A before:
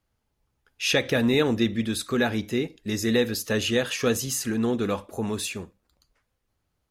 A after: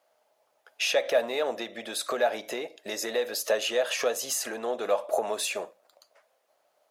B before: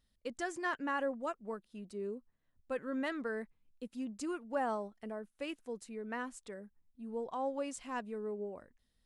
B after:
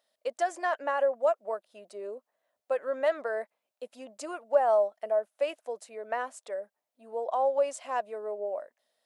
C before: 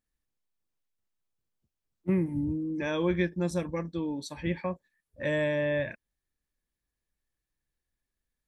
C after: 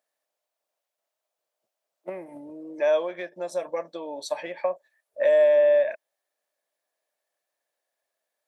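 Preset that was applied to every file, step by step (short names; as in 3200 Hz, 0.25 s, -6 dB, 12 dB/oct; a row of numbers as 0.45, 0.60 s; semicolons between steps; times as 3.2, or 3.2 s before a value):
in parallel at -10.5 dB: overloaded stage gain 23.5 dB; on the sum: compressor 6:1, threshold -31 dBFS; resonant high-pass 620 Hz, resonance Q 6.2; normalise peaks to -12 dBFS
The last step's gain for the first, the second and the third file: +4.5, +2.0, +3.0 dB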